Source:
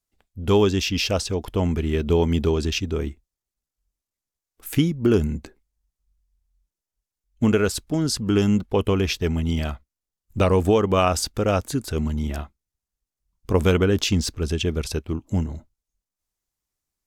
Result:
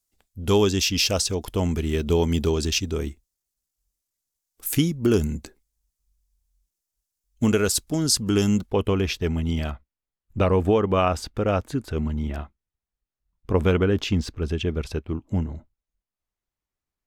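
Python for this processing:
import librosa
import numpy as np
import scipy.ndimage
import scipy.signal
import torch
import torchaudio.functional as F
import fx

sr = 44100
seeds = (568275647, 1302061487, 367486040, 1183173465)

y = fx.bass_treble(x, sr, bass_db=0, treble_db=fx.steps((0.0, 9.0), (8.69, -3.0), (9.7, -11.0)))
y = F.gain(torch.from_numpy(y), -1.5).numpy()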